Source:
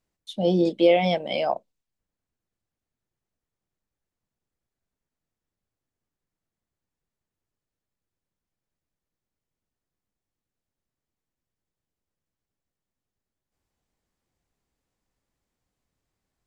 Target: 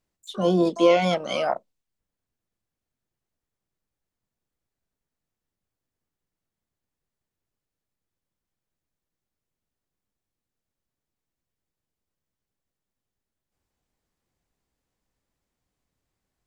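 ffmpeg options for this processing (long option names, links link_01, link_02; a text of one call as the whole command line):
ffmpeg -i in.wav -filter_complex "[0:a]asplit=2[link_01][link_02];[link_02]asetrate=88200,aresample=44100,atempo=0.5,volume=-13dB[link_03];[link_01][link_03]amix=inputs=2:normalize=0" out.wav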